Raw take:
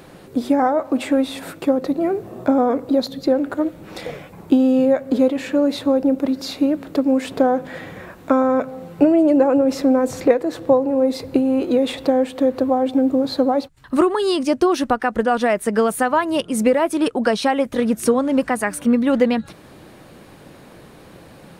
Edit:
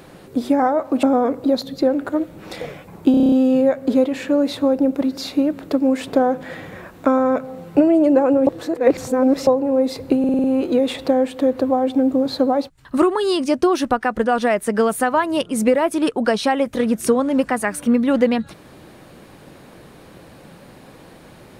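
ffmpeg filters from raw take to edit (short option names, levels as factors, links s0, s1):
-filter_complex "[0:a]asplit=16[s0][s1][s2][s3][s4][s5][s6][s7][s8][s9][s10][s11][s12][s13][s14][s15];[s0]atrim=end=1.032[s16];[s1]atrim=start=2.478:end=4.592[s17];[s2]atrim=start=4.558:end=4.592[s18];[s3]atrim=start=4.558:end=4.592[s19];[s4]atrim=start=4.558:end=4.592[s20];[s5]atrim=start=4.558:end=4.592[s21];[s6]atrim=start=4.558:end=4.592[s22];[s7]atrim=start=4.558:end=4.592[s23];[s8]atrim=start=4.558:end=9.712[s24];[s9]atrim=start=9.708:end=10.712,asetpts=PTS-STARTPTS,areverse[s25];[s10]atrim=start=10.708:end=11.482[s26];[s11]atrim=start=11.428:end=11.482[s27];[s12]atrim=start=11.428:end=11.482[s28];[s13]atrim=start=11.428:end=11.482[s29];[s14]atrim=start=11.428:end=11.482[s30];[s15]atrim=start=11.428[s31];[s16][s17]acrossfade=d=0.004:c1=hsin:c2=hsin[s32];[s32][s18]acrossfade=d=0.004:c1=hsin:c2=hsin[s33];[s33][s19]acrossfade=d=0.004:c1=hsin:c2=hsin[s34];[s34][s20]acrossfade=d=0.004:c1=hsin:c2=hsin[s35];[s35][s21]acrossfade=d=0.004:c1=hsin:c2=hsin[s36];[s36][s22]acrossfade=d=0.004:c1=hsin:c2=hsin[s37];[s37][s23]acrossfade=d=0.004:c1=hsin:c2=hsin[s38];[s38][s24]acrossfade=d=0.004:c1=hsin:c2=hsin[s39];[s39][s25]acrossfade=d=0.004:c1=hsin:c2=hsin[s40];[s40][s26]acrossfade=d=0.004:c1=hsin:c2=hsin[s41];[s41][s27]acrossfade=d=0.004:c1=hsin:c2=hsin[s42];[s42][s28]acrossfade=d=0.004:c1=hsin:c2=hsin[s43];[s43][s29]acrossfade=d=0.004:c1=hsin:c2=hsin[s44];[s44][s30]acrossfade=d=0.004:c1=hsin:c2=hsin[s45];[s45][s31]acrossfade=d=0.004:c1=hsin:c2=hsin"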